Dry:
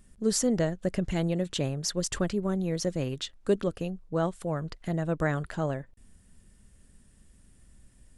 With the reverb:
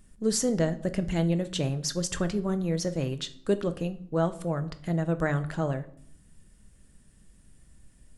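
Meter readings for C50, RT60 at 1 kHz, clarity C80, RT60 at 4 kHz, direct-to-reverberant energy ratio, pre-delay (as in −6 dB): 16.0 dB, 0.60 s, 20.0 dB, 0.50 s, 10.0 dB, 5 ms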